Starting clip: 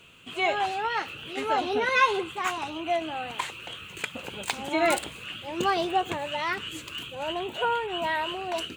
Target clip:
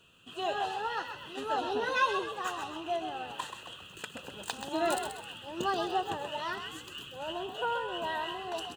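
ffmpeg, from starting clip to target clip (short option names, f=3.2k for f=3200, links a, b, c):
-filter_complex "[0:a]asplit=2[a][b];[b]aeval=exprs='sgn(val(0))*max(abs(val(0))-0.0112,0)':c=same,volume=-11dB[c];[a][c]amix=inputs=2:normalize=0,asuperstop=centerf=2200:order=4:qfactor=3.4,asplit=6[d][e][f][g][h][i];[e]adelay=130,afreqshift=50,volume=-8dB[j];[f]adelay=260,afreqshift=100,volume=-15.7dB[k];[g]adelay=390,afreqshift=150,volume=-23.5dB[l];[h]adelay=520,afreqshift=200,volume=-31.2dB[m];[i]adelay=650,afreqshift=250,volume=-39dB[n];[d][j][k][l][m][n]amix=inputs=6:normalize=0,volume=-8dB"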